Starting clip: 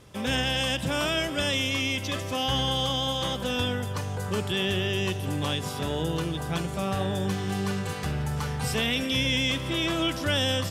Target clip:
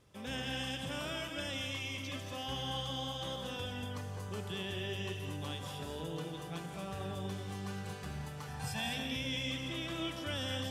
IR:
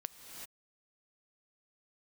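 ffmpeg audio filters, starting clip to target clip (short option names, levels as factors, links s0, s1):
-filter_complex "[0:a]asettb=1/sr,asplit=3[s0][s1][s2];[s0]atrim=end=8.484[s3];[s1]atrim=start=8.48:end=8.93,asetpts=PTS-STARTPTS,afade=t=in:d=0.004:c=qsin,afade=t=out:st=0.446:d=0.004:c=qsin,aecho=1:1:1.2:0.85,atrim=end_sample=19845[s4];[s2]atrim=start=8.926[s5];[s3][s4]acrossfade=d=0.004:c1=hsin:c2=qsin[s6];[s6][s5]acrossfade=d=0.004:c1=qsin:c2=hsin[s7];[1:a]atrim=start_sample=2205,asetrate=70560,aresample=44100[s8];[s7][s8]afir=irnorm=-1:irlink=0,volume=0.501"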